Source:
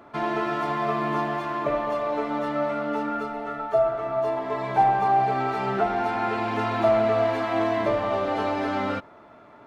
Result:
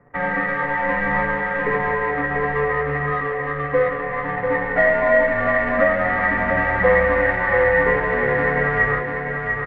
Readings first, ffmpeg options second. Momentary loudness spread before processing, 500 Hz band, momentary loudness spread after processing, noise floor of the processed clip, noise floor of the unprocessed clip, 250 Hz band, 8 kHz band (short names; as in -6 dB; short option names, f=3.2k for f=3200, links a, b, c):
7 LU, +5.0 dB, 7 LU, -26 dBFS, -49 dBFS, +1.0 dB, n/a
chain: -af "aeval=exprs='sgn(val(0))*max(abs(val(0))-0.00188,0)':c=same,afreqshift=-150,adynamicsmooth=sensitivity=3.5:basefreq=600,flanger=delay=6.9:depth=3.1:regen=-39:speed=0.23:shape=sinusoidal,lowpass=f=1.9k:t=q:w=15,aecho=1:1:693|1386|2079|2772|3465:0.562|0.219|0.0855|0.0334|0.013,volume=5dB"